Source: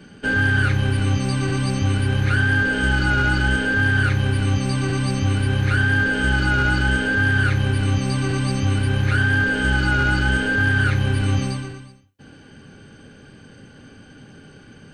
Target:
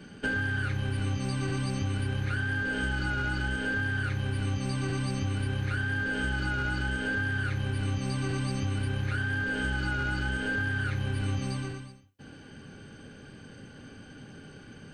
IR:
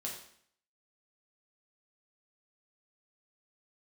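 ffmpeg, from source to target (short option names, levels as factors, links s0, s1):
-af "acompressor=threshold=0.0631:ratio=6,volume=0.708"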